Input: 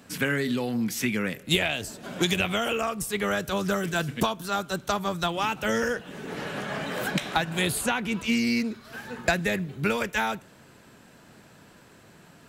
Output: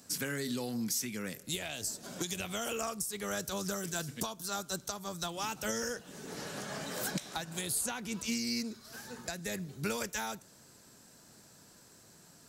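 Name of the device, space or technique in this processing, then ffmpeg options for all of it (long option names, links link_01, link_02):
over-bright horn tweeter: -af "highshelf=frequency=3900:width_type=q:width=1.5:gain=10.5,alimiter=limit=-14dB:level=0:latency=1:release=390,volume=-8.5dB"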